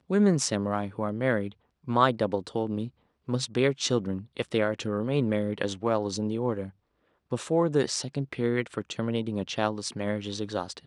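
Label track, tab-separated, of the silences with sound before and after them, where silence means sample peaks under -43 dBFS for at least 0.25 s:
1.520000	1.880000	silence
2.890000	3.280000	silence
6.700000	7.320000	silence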